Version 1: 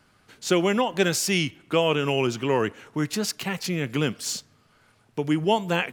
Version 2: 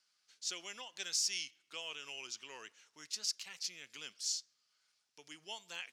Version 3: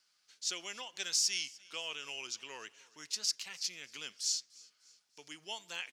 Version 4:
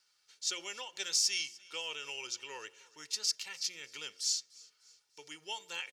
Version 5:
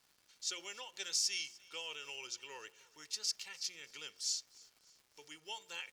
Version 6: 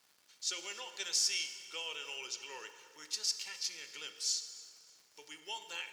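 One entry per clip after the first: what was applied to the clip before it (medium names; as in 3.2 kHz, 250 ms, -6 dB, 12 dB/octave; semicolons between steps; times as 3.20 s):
band-pass filter 5.5 kHz, Q 2.2; trim -4 dB
feedback delay 298 ms, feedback 48%, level -23.5 dB; trim +3.5 dB
comb 2.2 ms, depth 53%; de-hum 89.82 Hz, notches 8
crackle 350 per s -51 dBFS; trim -4.5 dB
high-pass 230 Hz 6 dB/octave; plate-style reverb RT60 2.3 s, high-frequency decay 0.65×, DRR 8 dB; trim +2.5 dB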